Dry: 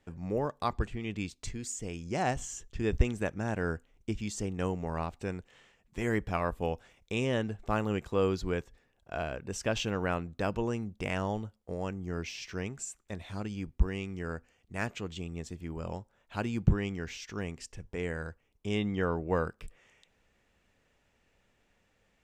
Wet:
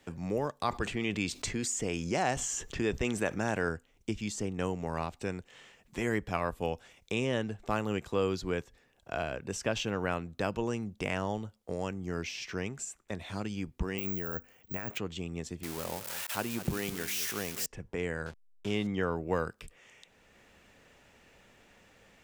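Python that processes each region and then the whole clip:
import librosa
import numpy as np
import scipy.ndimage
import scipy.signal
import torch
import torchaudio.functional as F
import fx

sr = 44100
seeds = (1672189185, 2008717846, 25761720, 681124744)

y = fx.chain(x, sr, fx.low_shelf(hz=250.0, db=-6.5),
    fx.env_flatten(amount_pct=50), at=(0.68, 3.69))
y = fx.chain(y, sr, fx.over_compress(threshold_db=-39.0, ratio=-1.0),
    fx.resample_bad(factor=2, down='filtered', up='zero_stuff'), at=(13.98, 14.98))
y = fx.chain(y, sr, fx.crossing_spikes(level_db=-25.5),
    fx.low_shelf(hz=180.0, db=-9.5),
    fx.echo_single(ms=205, db=-13.5), at=(15.63, 17.66))
y = fx.chain(y, sr, fx.delta_hold(step_db=-46.0),
    fx.lowpass(hz=7200.0, slope=12), at=(18.26, 18.87))
y = fx.low_shelf(y, sr, hz=78.0, db=-8.0)
y = fx.band_squash(y, sr, depth_pct=40)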